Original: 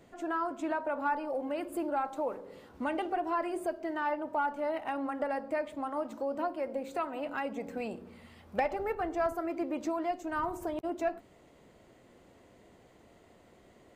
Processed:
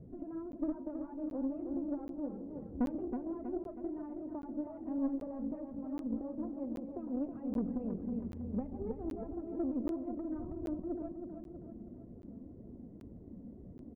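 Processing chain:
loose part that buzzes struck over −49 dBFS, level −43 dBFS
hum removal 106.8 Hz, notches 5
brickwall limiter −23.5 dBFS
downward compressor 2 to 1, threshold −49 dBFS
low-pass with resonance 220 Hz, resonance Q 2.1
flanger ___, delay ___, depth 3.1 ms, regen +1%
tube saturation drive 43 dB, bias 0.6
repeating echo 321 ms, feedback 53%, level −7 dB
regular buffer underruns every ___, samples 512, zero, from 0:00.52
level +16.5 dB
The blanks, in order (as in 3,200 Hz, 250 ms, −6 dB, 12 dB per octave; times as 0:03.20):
1.9 Hz, 1.5 ms, 0.78 s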